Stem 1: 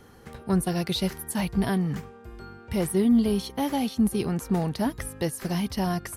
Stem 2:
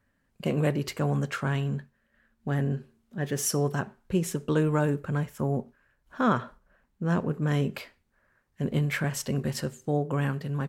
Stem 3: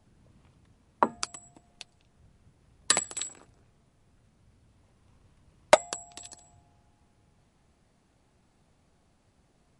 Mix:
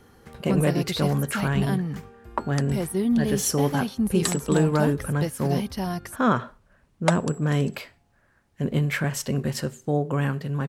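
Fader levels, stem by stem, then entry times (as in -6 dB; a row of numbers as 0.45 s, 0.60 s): -2.0 dB, +3.0 dB, -4.0 dB; 0.00 s, 0.00 s, 1.35 s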